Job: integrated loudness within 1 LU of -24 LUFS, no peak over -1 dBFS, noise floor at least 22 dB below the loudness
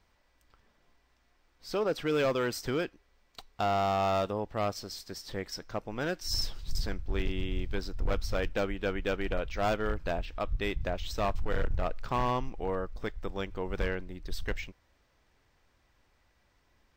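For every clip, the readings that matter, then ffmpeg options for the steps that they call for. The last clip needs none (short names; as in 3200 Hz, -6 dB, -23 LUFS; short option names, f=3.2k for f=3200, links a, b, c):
loudness -33.5 LUFS; peak -22.5 dBFS; loudness target -24.0 LUFS
-> -af "volume=9.5dB"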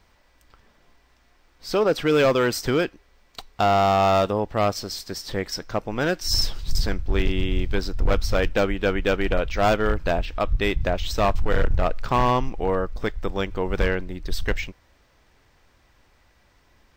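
loudness -24.0 LUFS; peak -13.0 dBFS; noise floor -60 dBFS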